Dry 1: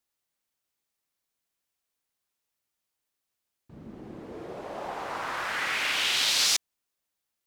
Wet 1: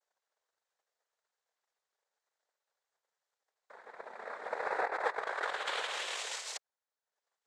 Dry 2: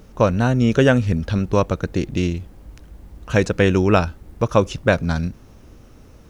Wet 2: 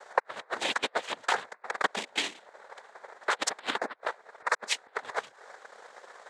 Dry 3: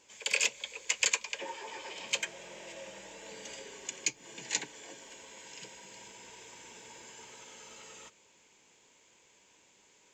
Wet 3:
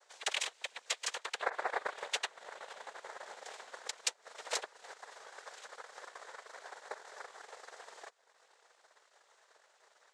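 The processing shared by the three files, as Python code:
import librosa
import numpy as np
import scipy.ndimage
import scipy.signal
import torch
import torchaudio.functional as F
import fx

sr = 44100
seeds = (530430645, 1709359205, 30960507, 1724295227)

y = fx.ladder_highpass(x, sr, hz=830.0, resonance_pct=80)
y = fx.over_compress(y, sr, threshold_db=-40.0, ratio=-0.5)
y = fx.noise_vocoder(y, sr, seeds[0], bands=6)
y = fx.transient(y, sr, attack_db=6, sustain_db=-7)
y = y * 10.0 ** (4.5 / 20.0)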